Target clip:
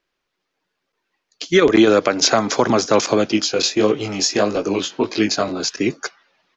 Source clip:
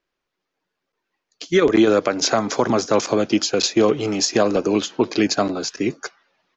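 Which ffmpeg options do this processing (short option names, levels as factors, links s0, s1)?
-filter_complex "[0:a]highshelf=f=2400:g=8,asettb=1/sr,asplit=3[s0][s1][s2];[s0]atrim=end=3.324[s3];[s1]atrim=start=3.32:end=5.6,asetpts=PTS-STARTPTS,afade=t=in:d=0.004:c=qsin,afade=t=out:st=2.276:d=0.004:c=qsin,flanger=delay=18:depth=4.1:speed=1.6[s4];[s2]atrim=start=5.596[s5];[s3][s4]acrossfade=d=0.004:c1=hsin:c2=qsin[s6];[s6][s5]acrossfade=d=0.004:c1=qsin:c2=hsin,highshelf=f=7100:g=-11.5,volume=1.26"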